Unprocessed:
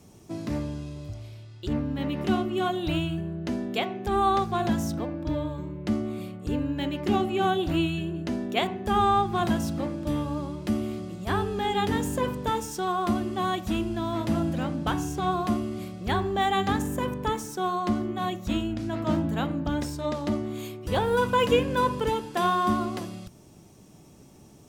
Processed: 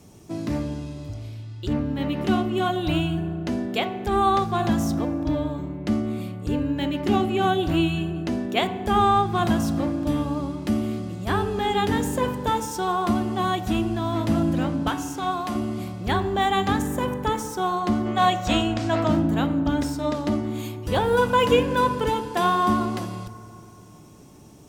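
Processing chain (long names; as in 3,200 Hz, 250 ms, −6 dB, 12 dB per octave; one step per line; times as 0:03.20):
0:14.88–0:15.55: low-shelf EQ 400 Hz −11 dB
0:18.06–0:19.07: gain on a spectral selection 430–8,900 Hz +8 dB
feedback delay network reverb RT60 3 s, high-frequency decay 0.4×, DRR 13 dB
level +3 dB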